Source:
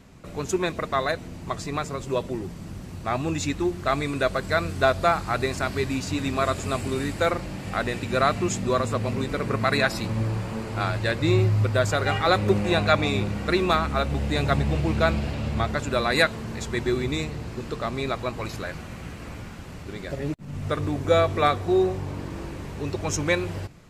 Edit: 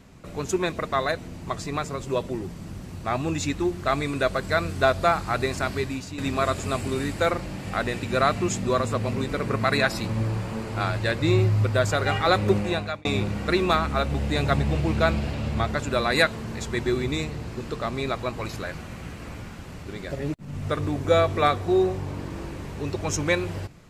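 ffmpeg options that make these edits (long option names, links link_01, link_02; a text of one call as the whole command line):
ffmpeg -i in.wav -filter_complex "[0:a]asplit=3[link_01][link_02][link_03];[link_01]atrim=end=6.18,asetpts=PTS-STARTPTS,afade=type=out:start_time=5.71:duration=0.47:silence=0.298538[link_04];[link_02]atrim=start=6.18:end=13.05,asetpts=PTS-STARTPTS,afade=type=in:duration=0.004:curve=hsin:silence=0.298538,afade=type=out:start_time=6.37:duration=0.5[link_05];[link_03]atrim=start=13.05,asetpts=PTS-STARTPTS,afade=type=in:duration=0.004:curve=hsin[link_06];[link_04][link_05][link_06]concat=n=3:v=0:a=1" out.wav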